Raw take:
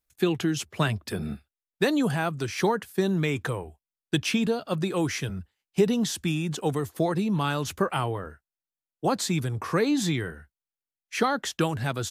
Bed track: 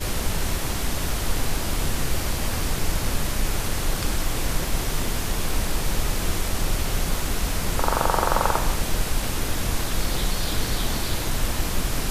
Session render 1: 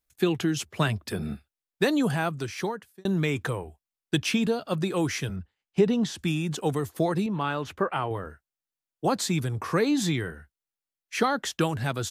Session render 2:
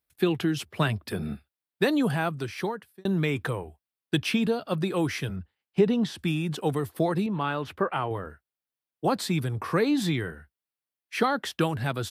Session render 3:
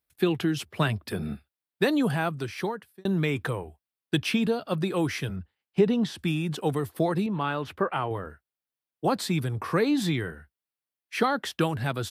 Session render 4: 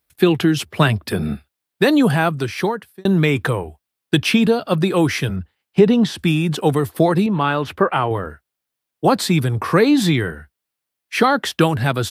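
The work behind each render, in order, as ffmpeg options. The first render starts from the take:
-filter_complex "[0:a]asettb=1/sr,asplit=3[s0][s1][s2];[s0]atrim=end=5.364[s3];[s1]atrim=start=5.36:end=6.19,asetpts=PTS-STARTPTS,afade=t=in:d=0.004:c=qsin,afade=t=out:st=0.826:d=0.004:c=qsin,aemphasis=mode=reproduction:type=50fm[s4];[s2]atrim=start=6.186[s5];[s3][s4]acrossfade=d=0.004:c1=hsin:c2=qsin[s6];[s6][s5]acrossfade=d=0.004:c1=qsin:c2=hsin,asettb=1/sr,asplit=3[s7][s8][s9];[s7]atrim=end=7.264[s10];[s8]atrim=start=7.26:end=8.11,asetpts=PTS-STARTPTS,afade=t=in:d=0.004:c=qsin,afade=t=out:st=0.846:d=0.004:c=qsin,bass=f=250:g=-6,treble=f=4000:g=-15[s11];[s9]atrim=start=8.106[s12];[s10][s11]acrossfade=d=0.004:c1=hsin:c2=qsin[s13];[s13][s12]acrossfade=d=0.004:c1=qsin:c2=hsin,asplit=2[s14][s15];[s14]atrim=end=3.05,asetpts=PTS-STARTPTS,afade=t=out:st=2.26:d=0.79[s16];[s15]atrim=start=3.05,asetpts=PTS-STARTPTS,afade=t=in:d=0.004:c=hsin[s17];[s16][s17]concat=n=2:v=0:a=1"
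-af "highpass=60,equalizer=f=6700:w=2.4:g=-10"
-af anull
-af "volume=3.16,alimiter=limit=0.794:level=0:latency=1"

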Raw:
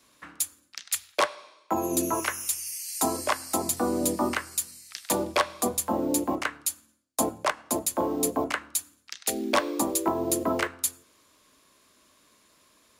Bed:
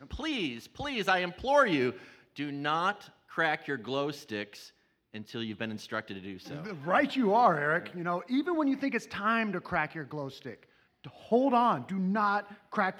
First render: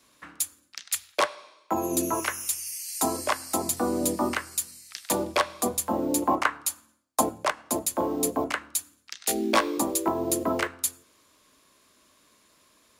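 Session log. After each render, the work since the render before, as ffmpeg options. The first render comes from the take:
-filter_complex "[0:a]asettb=1/sr,asplit=3[s0][s1][s2];[s0]atrim=end=6.224[s3];[s1]atrim=start=6.22:end=7.21,asetpts=PTS-STARTPTS,afade=t=in:d=0.004:c=qsin,afade=t=out:st=0.986:d=0.004:c=qsin,equalizer=f=1000:w=1.1:g=9.5[s4];[s2]atrim=start=7.206[s5];[s3][s4]acrossfade=d=0.004:c1=hsin:c2=qsin[s6];[s6][s5]acrossfade=d=0.004:c1=qsin:c2=hsin,asettb=1/sr,asplit=3[s7][s8][s9];[s7]atrim=end=9.194[s10];[s8]atrim=start=9.19:end=9.78,asetpts=PTS-STARTPTS,afade=t=in:d=0.004:c=qsin,afade=t=out:st=0.586:d=0.004:c=qsin,asplit=2[s11][s12];[s12]adelay=18,volume=0.708[s13];[s11][s13]amix=inputs=2:normalize=0,atrim=end_sample=26019[s14];[s9]atrim=start=9.776[s15];[s10][s14]acrossfade=d=0.004:c1=hsin:c2=qsin[s16];[s16][s15]acrossfade=d=0.004:c1=qsin:c2=hsin"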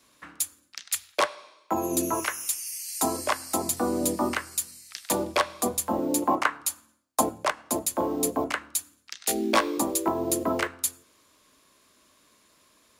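-filter_complex "[0:a]asettb=1/sr,asplit=3[s0][s1][s2];[s0]atrim=end=2.254[s3];[s1]atrim=start=2.25:end=2.72,asetpts=PTS-STARTPTS,afade=t=in:d=0.004:c=qsin,afade=t=out:st=0.466:d=0.004:c=qsin,lowshelf=f=190:g=-12[s4];[s2]atrim=start=2.716[s5];[s3][s4]acrossfade=d=0.004:c1=hsin:c2=qsin[s6];[s6][s5]acrossfade=d=0.004:c1=qsin:c2=hsin,asettb=1/sr,asplit=3[s7][s8][s9];[s7]atrim=end=5.994[s10];[s8]atrim=start=5.99:end=6.61,asetpts=PTS-STARTPTS,afade=t=in:d=0.004:c=qsin,afade=t=out:st=0.616:d=0.004:c=qsin,highpass=110[s11];[s9]atrim=start=6.606[s12];[s10][s11]acrossfade=d=0.004:c1=hsin:c2=qsin[s13];[s13][s12]acrossfade=d=0.004:c1=qsin:c2=hsin"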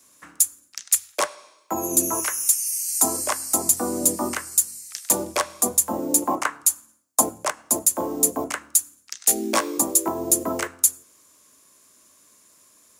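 -af "highpass=66,highshelf=f=5200:t=q:w=1.5:g=8.5"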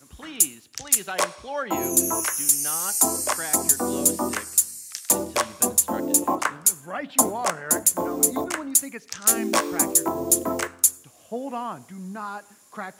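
-filter_complex "[1:a]volume=0.501[s0];[0:a][s0]amix=inputs=2:normalize=0"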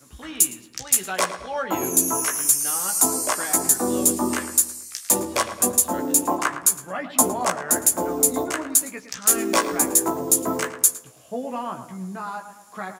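-filter_complex "[0:a]asplit=2[s0][s1];[s1]adelay=16,volume=0.562[s2];[s0][s2]amix=inputs=2:normalize=0,asplit=2[s3][s4];[s4]adelay=110,lowpass=f=2100:p=1,volume=0.316,asplit=2[s5][s6];[s6]adelay=110,lowpass=f=2100:p=1,volume=0.5,asplit=2[s7][s8];[s8]adelay=110,lowpass=f=2100:p=1,volume=0.5,asplit=2[s9][s10];[s10]adelay=110,lowpass=f=2100:p=1,volume=0.5,asplit=2[s11][s12];[s12]adelay=110,lowpass=f=2100:p=1,volume=0.5[s13];[s3][s5][s7][s9][s11][s13]amix=inputs=6:normalize=0"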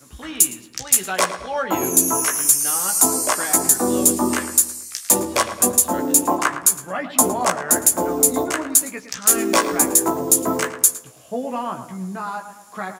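-af "volume=1.5,alimiter=limit=0.891:level=0:latency=1"

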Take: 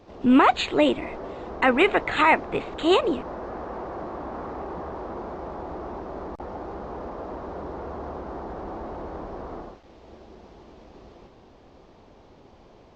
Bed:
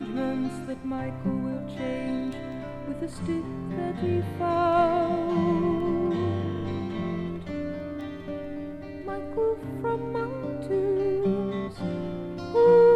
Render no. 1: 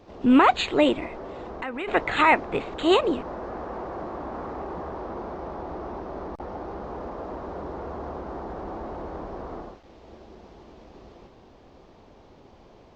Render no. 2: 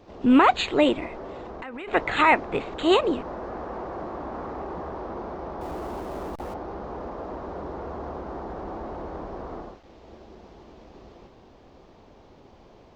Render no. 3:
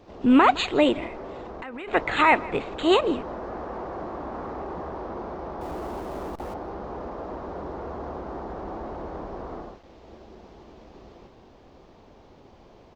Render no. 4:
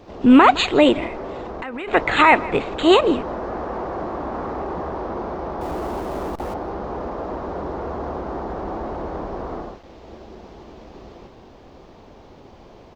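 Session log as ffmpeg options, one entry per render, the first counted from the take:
-filter_complex "[0:a]asplit=3[s0][s1][s2];[s0]afade=t=out:st=1.06:d=0.02[s3];[s1]acompressor=threshold=0.0224:ratio=3:attack=3.2:release=140:knee=1:detection=peak,afade=t=in:st=1.06:d=0.02,afade=t=out:st=1.87:d=0.02[s4];[s2]afade=t=in:st=1.87:d=0.02[s5];[s3][s4][s5]amix=inputs=3:normalize=0,asettb=1/sr,asplit=3[s6][s7][s8];[s6]atrim=end=4.944[s9];[s7]atrim=start=4.94:end=6.84,asetpts=PTS-STARTPTS,afade=t=in:d=0.004:c=qsin,afade=t=out:st=1.896:d=0.004:c=qsin,bandreject=f=7200:w=9.2[s10];[s8]atrim=start=6.836[s11];[s9][s10]acrossfade=d=0.004:c1=hsin:c2=qsin[s12];[s12][s11]acrossfade=d=0.004:c1=qsin:c2=hsin"
-filter_complex "[0:a]asettb=1/sr,asplit=3[s0][s1][s2];[s0]atrim=end=1.374[s3];[s1]atrim=start=1.37:end=1.93,asetpts=PTS-STARTPTS,afade=t=in:d=0.004:c=qsin,afade=t=out:st=0.556:d=0.004:c=qsin,acompressor=threshold=0.02:ratio=3:attack=3.2:release=140:knee=1:detection=peak[s4];[s2]atrim=start=1.926[s5];[s3][s4]acrossfade=d=0.004:c1=hsin:c2=qsin[s6];[s6][s5]acrossfade=d=0.004:c1=qsin:c2=hsin,asettb=1/sr,asplit=3[s7][s8][s9];[s7]atrim=end=5.614[s10];[s8]atrim=start=5.61:end=6.54,asetpts=PTS-STARTPTS,afade=t=in:d=0.004:c=qsin,afade=t=out:st=0.926:d=0.004:c=qsin,aeval=exprs='val(0)+0.5*0.00841*sgn(val(0))':c=same[s11];[s9]atrim=start=6.536[s12];[s10][s11]acrossfade=d=0.004:c1=hsin:c2=qsin[s13];[s13][s12]acrossfade=d=0.004:c1=qsin:c2=hsin"
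-filter_complex "[0:a]asplit=2[s0][s1];[s1]adelay=163.3,volume=0.1,highshelf=f=4000:g=-3.67[s2];[s0][s2]amix=inputs=2:normalize=0"
-af "volume=2.11,alimiter=limit=0.708:level=0:latency=1"

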